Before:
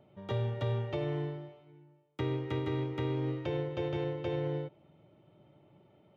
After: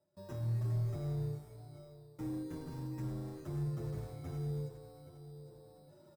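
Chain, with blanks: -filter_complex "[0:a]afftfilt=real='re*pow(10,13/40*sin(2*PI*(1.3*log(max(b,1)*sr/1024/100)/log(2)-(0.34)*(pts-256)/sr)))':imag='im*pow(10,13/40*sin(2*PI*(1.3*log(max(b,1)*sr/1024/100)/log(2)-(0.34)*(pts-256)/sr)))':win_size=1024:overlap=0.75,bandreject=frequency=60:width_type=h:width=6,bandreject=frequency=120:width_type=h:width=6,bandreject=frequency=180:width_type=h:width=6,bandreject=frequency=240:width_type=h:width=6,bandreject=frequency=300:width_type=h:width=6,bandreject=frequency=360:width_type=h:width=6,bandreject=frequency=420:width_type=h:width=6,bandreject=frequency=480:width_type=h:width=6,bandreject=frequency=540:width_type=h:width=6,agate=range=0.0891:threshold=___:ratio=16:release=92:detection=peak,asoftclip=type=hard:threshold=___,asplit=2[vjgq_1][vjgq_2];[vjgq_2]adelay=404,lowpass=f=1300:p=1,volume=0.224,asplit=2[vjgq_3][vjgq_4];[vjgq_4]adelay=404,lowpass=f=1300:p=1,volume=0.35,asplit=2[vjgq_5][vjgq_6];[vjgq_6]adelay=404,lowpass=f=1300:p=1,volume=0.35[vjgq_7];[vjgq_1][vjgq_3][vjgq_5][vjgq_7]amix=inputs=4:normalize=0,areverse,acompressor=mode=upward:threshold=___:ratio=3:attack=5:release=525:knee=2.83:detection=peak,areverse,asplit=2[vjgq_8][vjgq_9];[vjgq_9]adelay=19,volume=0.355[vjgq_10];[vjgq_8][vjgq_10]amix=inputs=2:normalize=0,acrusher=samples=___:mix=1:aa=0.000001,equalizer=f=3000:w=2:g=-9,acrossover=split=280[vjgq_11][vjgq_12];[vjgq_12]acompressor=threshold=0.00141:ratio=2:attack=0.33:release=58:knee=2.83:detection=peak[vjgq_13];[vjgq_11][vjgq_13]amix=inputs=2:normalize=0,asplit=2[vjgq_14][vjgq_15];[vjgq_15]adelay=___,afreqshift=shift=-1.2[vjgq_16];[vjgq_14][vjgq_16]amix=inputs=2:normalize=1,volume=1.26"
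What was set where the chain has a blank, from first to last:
0.00141, 0.0237, 0.00794, 10, 7.7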